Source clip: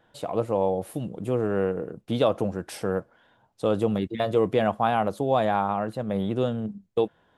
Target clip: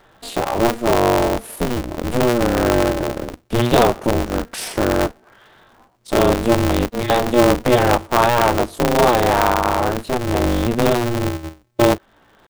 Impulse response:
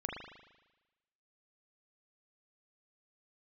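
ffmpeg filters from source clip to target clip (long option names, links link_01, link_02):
-filter_complex "[0:a]asplit=2[link_01][link_02];[link_02]acompressor=threshold=-32dB:ratio=6,volume=0dB[link_03];[link_01][link_03]amix=inputs=2:normalize=0,atempo=0.59,aeval=exprs='val(0)*sgn(sin(2*PI*120*n/s))':channel_layout=same,volume=6dB"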